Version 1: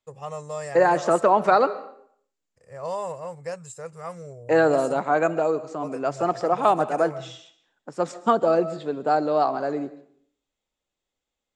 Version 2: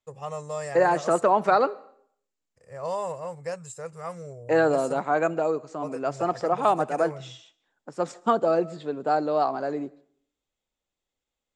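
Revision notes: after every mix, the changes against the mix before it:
second voice: send −10.5 dB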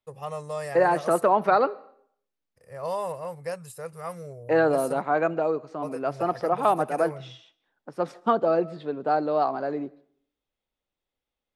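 first voice: remove low-pass filter 3,400 Hz 6 dB per octave
master: remove low-pass with resonance 7,400 Hz, resonance Q 8

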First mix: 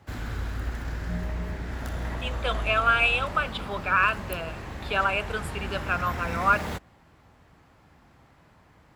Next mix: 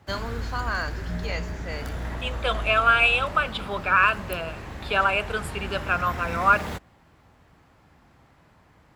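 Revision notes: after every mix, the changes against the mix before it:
first voice: unmuted
second voice +3.0 dB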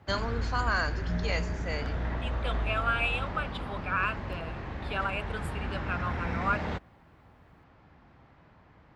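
second voice −10.5 dB
background: add high-frequency loss of the air 190 metres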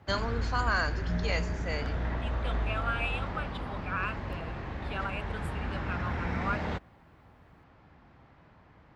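second voice −4.5 dB

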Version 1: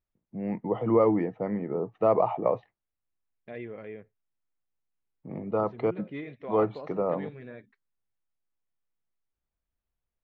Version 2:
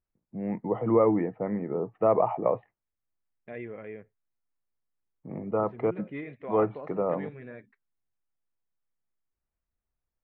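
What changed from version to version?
second voice: remove Gaussian smoothing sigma 2.6 samples
master: add low-pass filter 2,400 Hz 24 dB per octave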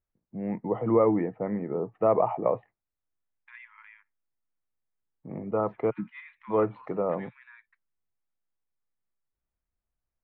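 second voice: add linear-phase brick-wall high-pass 860 Hz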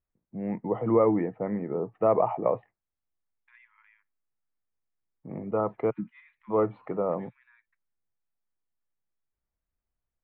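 second voice −9.5 dB

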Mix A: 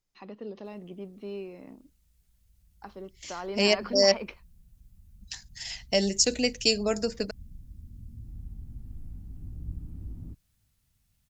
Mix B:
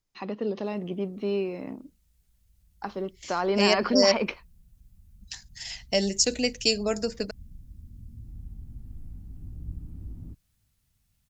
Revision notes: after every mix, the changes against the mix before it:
first voice +10.0 dB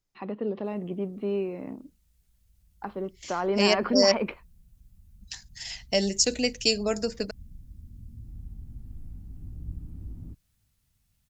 first voice: add high-frequency loss of the air 390 metres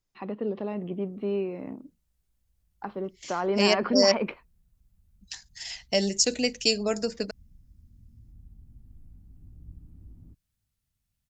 background −9.0 dB

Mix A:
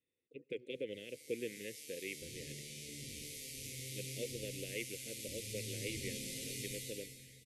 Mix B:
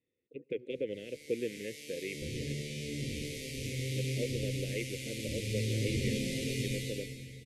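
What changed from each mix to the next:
speech −7.5 dB
master: remove first-order pre-emphasis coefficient 0.8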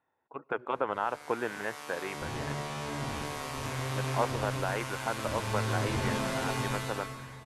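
master: remove Chebyshev band-stop filter 510–2,100 Hz, order 4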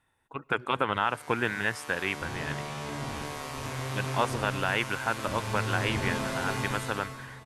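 speech: remove resonant band-pass 580 Hz, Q 0.97

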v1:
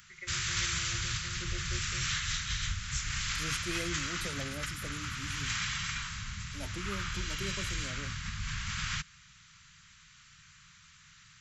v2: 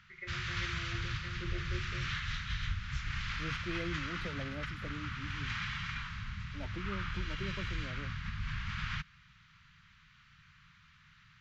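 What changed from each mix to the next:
first voice: send +7.0 dB
second voice: send off
master: add high-frequency loss of the air 280 metres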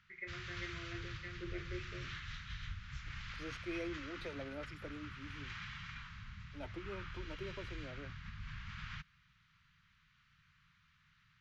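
second voice: add high-pass filter 290 Hz 24 dB per octave
background −9.0 dB

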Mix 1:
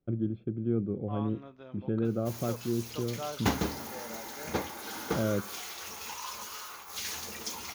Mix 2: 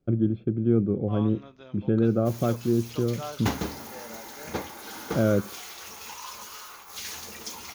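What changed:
first voice +7.5 dB
second voice: remove low-pass filter 1,600 Hz 6 dB per octave

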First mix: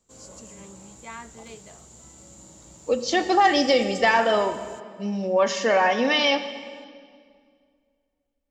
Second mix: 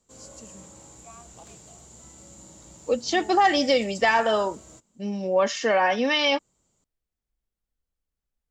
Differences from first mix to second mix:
first voice: add formant filter a
reverb: off

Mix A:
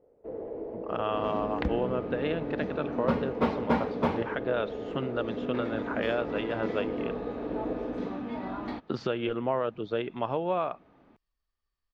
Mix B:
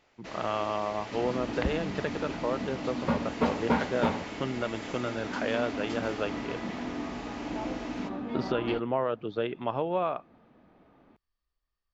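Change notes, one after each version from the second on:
speech: entry −0.55 s
first sound: remove low-pass with resonance 480 Hz, resonance Q 6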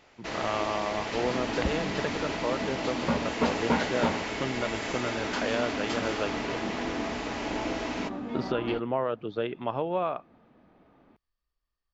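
first sound +8.0 dB

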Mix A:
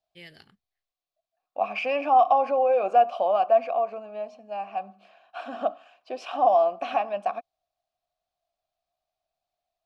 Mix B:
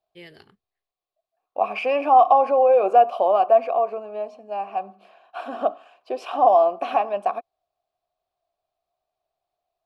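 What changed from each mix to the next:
second voice: remove high-frequency loss of the air 55 metres
master: add graphic EQ with 15 bands 100 Hz +4 dB, 400 Hz +11 dB, 1,000 Hz +6 dB, 6,300 Hz −4 dB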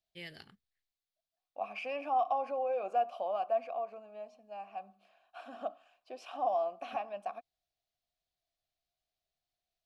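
second voice −12.0 dB
master: add graphic EQ with 15 bands 100 Hz −4 dB, 400 Hz −11 dB, 1,000 Hz −6 dB, 6,300 Hz +4 dB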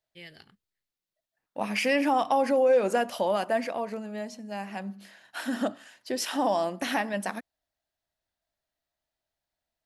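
second voice: remove formant filter a

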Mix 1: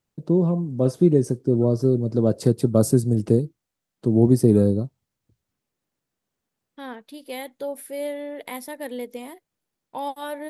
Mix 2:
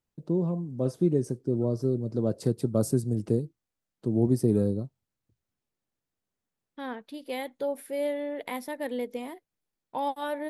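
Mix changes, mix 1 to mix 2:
first voice −7.5 dB
second voice: add high-shelf EQ 5,400 Hz −8.5 dB

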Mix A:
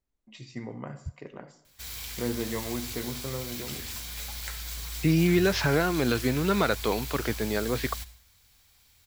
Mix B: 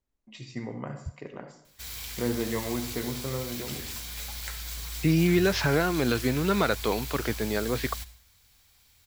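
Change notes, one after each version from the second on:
first voice: send +6.5 dB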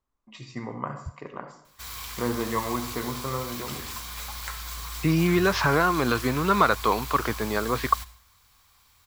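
master: add parametric band 1,100 Hz +14 dB 0.62 octaves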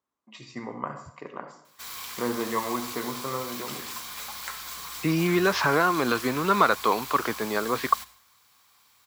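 master: add high-pass filter 190 Hz 12 dB per octave

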